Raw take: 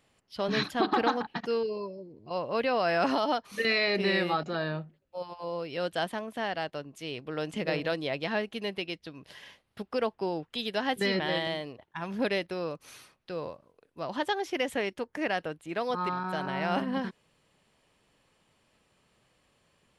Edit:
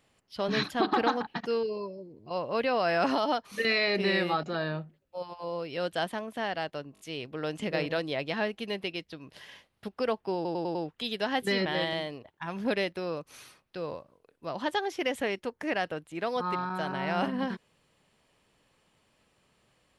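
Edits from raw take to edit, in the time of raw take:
6.94 stutter 0.02 s, 4 plays
10.29 stutter 0.10 s, 5 plays

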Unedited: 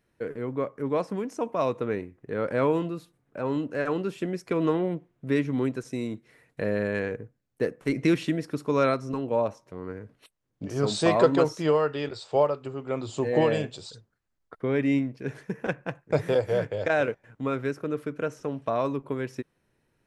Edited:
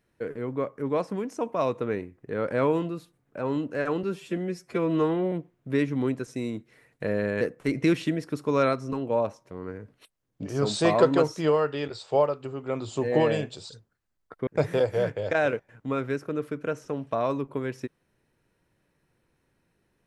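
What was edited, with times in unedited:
4.03–4.89 stretch 1.5×
6.98–7.62 cut
14.68–16.02 cut

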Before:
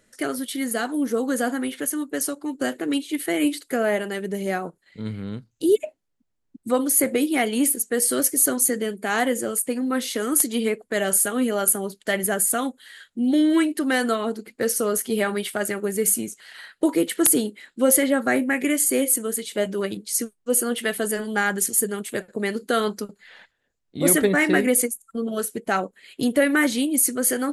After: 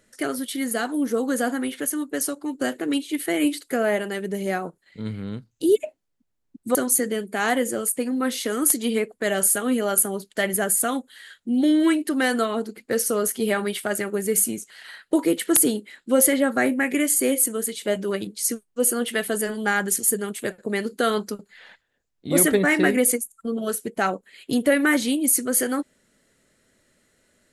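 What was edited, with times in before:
6.75–8.45 cut

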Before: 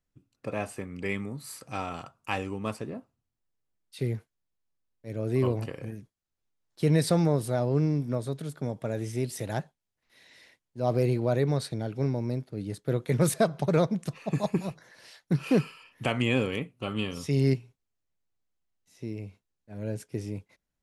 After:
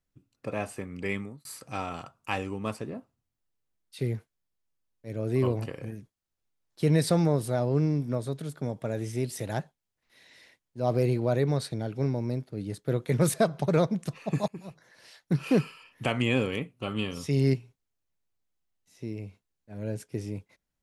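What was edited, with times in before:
1.17–1.45 fade out
14.48–15.49 fade in equal-power, from -21 dB

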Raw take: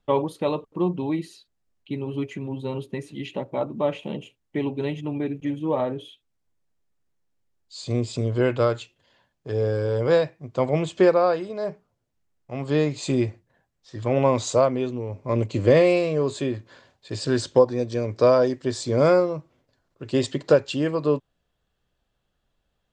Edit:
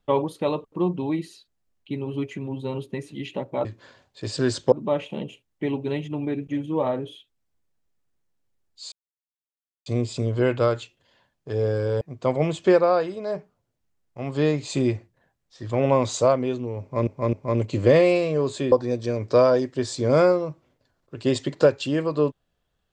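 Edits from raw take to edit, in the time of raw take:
7.85 insert silence 0.94 s
10–10.34 cut
15.14–15.4 loop, 3 plays
16.53–17.6 move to 3.65

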